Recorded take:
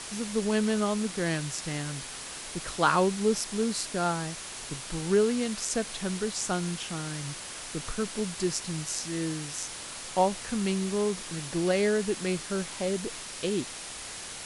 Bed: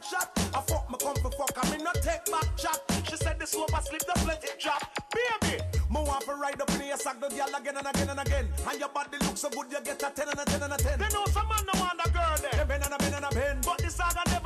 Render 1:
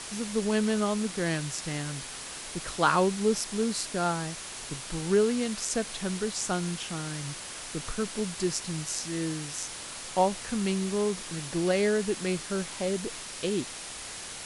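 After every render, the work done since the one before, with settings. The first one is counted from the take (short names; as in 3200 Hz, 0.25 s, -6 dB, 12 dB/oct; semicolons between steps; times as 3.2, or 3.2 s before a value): nothing audible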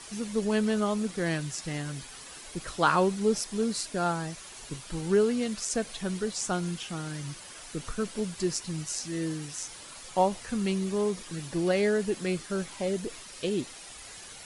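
denoiser 9 dB, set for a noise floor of -41 dBFS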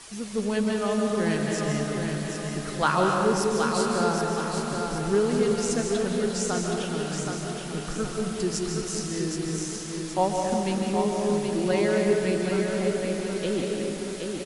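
feedback echo 0.772 s, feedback 46%, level -5.5 dB; digital reverb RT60 2.4 s, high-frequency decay 0.6×, pre-delay 0.11 s, DRR 0.5 dB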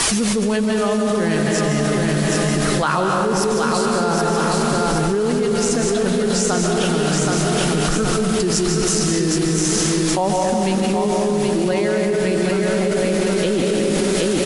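fast leveller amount 100%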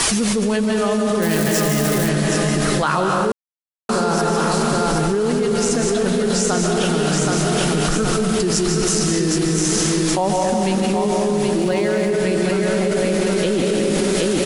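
1.22–2.09 switching spikes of -16 dBFS; 3.32–3.89 mute; 11.61–12.1 backlash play -45 dBFS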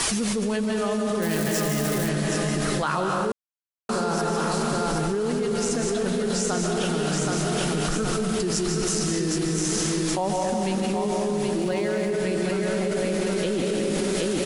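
gain -6.5 dB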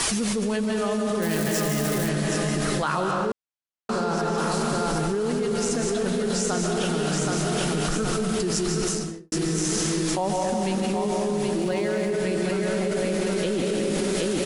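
3.11–4.38 air absorption 56 m; 8.84–9.32 studio fade out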